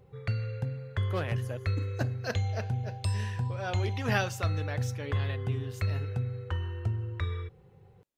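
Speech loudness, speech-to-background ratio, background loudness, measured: −38.0 LKFS, −4.5 dB, −33.5 LKFS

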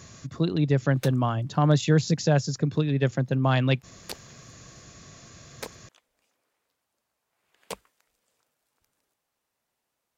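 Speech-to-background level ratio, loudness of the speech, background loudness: 17.5 dB, −24.5 LKFS, −42.0 LKFS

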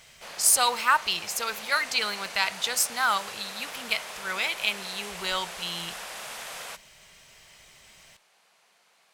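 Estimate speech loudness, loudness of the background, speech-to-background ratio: −26.0 LKFS, −38.0 LKFS, 12.0 dB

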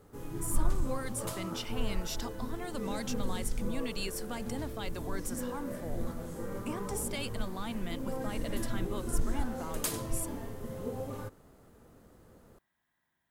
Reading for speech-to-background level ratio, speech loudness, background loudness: −0.5 dB, −40.0 LKFS, −39.5 LKFS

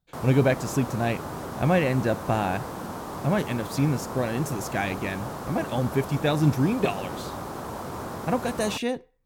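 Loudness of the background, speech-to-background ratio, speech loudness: −35.0 LKFS, 8.5 dB, −26.5 LKFS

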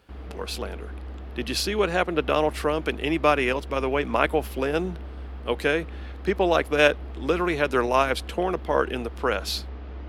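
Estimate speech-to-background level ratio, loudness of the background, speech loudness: 14.0 dB, −39.0 LKFS, −25.0 LKFS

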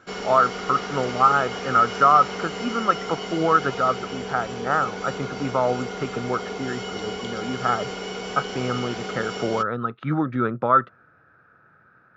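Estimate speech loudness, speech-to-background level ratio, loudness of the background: −23.0 LKFS, 8.5 dB, −31.5 LKFS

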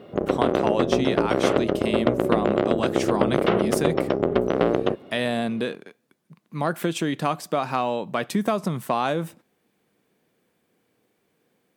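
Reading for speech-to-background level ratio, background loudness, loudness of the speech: −4.5 dB, −23.0 LKFS, −27.5 LKFS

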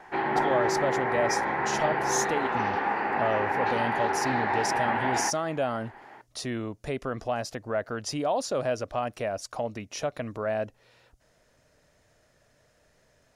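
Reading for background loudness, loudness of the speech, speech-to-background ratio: −27.5 LKFS, −31.5 LKFS, −4.0 dB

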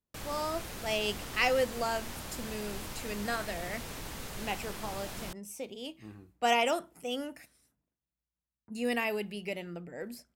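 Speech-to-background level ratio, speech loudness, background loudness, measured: 7.0 dB, −34.5 LKFS, −41.5 LKFS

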